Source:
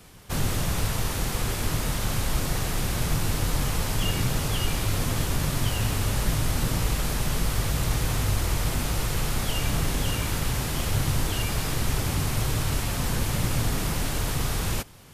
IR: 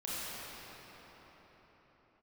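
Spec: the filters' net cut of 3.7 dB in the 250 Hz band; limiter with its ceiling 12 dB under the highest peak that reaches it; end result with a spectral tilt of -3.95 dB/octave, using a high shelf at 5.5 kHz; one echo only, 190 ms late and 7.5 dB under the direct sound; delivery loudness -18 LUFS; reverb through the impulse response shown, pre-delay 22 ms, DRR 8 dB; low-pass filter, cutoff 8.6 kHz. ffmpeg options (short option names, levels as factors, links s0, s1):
-filter_complex "[0:a]lowpass=8600,equalizer=f=250:t=o:g=-6,highshelf=f=5500:g=6,alimiter=limit=0.0708:level=0:latency=1,aecho=1:1:190:0.422,asplit=2[s0][s1];[1:a]atrim=start_sample=2205,adelay=22[s2];[s1][s2]afir=irnorm=-1:irlink=0,volume=0.237[s3];[s0][s3]amix=inputs=2:normalize=0,volume=4.73"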